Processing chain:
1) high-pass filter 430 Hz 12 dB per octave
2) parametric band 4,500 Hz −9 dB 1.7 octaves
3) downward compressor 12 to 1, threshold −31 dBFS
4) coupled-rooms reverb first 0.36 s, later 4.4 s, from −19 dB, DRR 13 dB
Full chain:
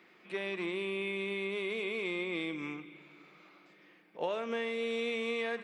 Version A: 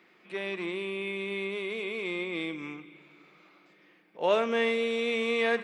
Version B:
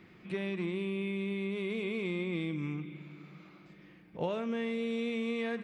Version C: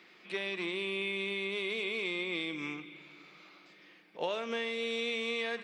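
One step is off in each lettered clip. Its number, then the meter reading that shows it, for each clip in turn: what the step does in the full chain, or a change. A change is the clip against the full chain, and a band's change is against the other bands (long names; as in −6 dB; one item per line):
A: 3, average gain reduction 3.0 dB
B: 1, 125 Hz band +13.5 dB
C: 2, 4 kHz band +7.0 dB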